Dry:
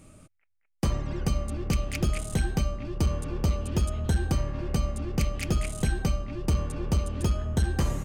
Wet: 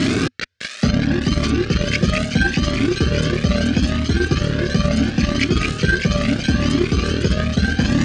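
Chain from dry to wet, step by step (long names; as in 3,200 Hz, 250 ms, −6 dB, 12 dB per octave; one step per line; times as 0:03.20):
converter with a step at zero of −33 dBFS
parametric band 900 Hz −9.5 dB 2.7 octaves
reversed playback
downward compressor 6 to 1, threshold −33 dBFS, peak gain reduction 12.5 dB
reversed playback
transient designer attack +10 dB, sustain −9 dB
loudspeaker in its box 170–5,000 Hz, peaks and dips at 250 Hz +9 dB, 420 Hz +3 dB, 930 Hz −8 dB, 1,600 Hz +9 dB
on a send: delay with a high-pass on its return 605 ms, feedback 66%, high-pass 1,800 Hz, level −5 dB
on the sum: boost into a limiter +30 dB
flanger whose copies keep moving one way rising 0.74 Hz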